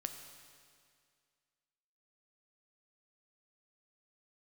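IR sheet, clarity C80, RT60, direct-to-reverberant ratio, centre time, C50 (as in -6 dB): 8.0 dB, 2.1 s, 6.0 dB, 35 ms, 7.5 dB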